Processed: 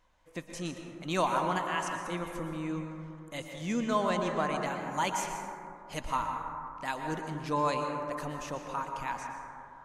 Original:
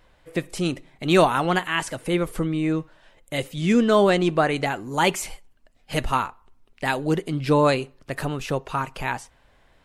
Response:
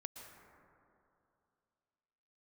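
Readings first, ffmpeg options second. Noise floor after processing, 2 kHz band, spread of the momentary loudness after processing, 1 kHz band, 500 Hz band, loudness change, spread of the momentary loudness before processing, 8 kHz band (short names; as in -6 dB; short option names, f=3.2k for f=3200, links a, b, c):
-51 dBFS, -10.5 dB, 13 LU, -6.0 dB, -12.0 dB, -10.5 dB, 13 LU, -7.0 dB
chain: -filter_complex "[0:a]equalizer=f=125:t=o:w=0.33:g=-7,equalizer=f=400:t=o:w=0.33:g=-7,equalizer=f=1k:t=o:w=0.33:g=8,equalizer=f=6.3k:t=o:w=0.33:g=10[a];[1:a]atrim=start_sample=2205[b];[a][b]afir=irnorm=-1:irlink=0,volume=-7dB"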